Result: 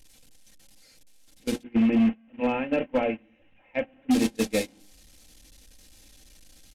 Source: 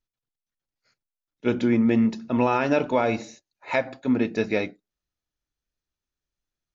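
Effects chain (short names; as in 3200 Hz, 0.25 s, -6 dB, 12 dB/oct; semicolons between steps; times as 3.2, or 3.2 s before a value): delta modulation 64 kbps, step -22 dBFS; 1.63–4.11 elliptic low-pass 2800 Hz, stop band 40 dB; notches 60/120/180/240/300/360/420/480/540/600 Hz; gate -22 dBFS, range -28 dB; bell 1200 Hz -13.5 dB 1.1 oct; notch 380 Hz, Q 12; comb 3.8 ms, depth 52%; vocal rider 2 s; hard clip -16.5 dBFS, distortion -15 dB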